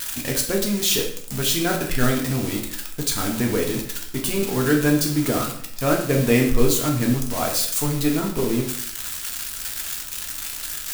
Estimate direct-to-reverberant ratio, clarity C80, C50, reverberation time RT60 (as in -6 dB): -0.5 dB, 10.0 dB, 6.5 dB, 0.65 s